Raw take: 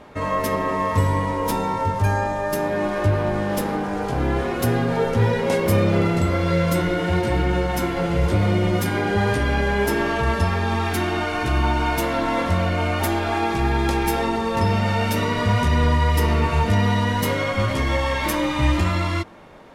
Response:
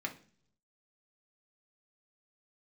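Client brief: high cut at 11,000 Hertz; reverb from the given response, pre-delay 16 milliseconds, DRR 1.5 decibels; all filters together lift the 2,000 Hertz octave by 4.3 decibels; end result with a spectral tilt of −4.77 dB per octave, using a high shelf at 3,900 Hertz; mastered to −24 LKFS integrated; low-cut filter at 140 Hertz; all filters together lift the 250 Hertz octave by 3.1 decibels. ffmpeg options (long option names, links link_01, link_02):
-filter_complex "[0:a]highpass=140,lowpass=11000,equalizer=frequency=250:width_type=o:gain=5,equalizer=frequency=2000:width_type=o:gain=7,highshelf=frequency=3900:gain=-8,asplit=2[link_01][link_02];[1:a]atrim=start_sample=2205,adelay=16[link_03];[link_02][link_03]afir=irnorm=-1:irlink=0,volume=-3.5dB[link_04];[link_01][link_04]amix=inputs=2:normalize=0,volume=-5.5dB"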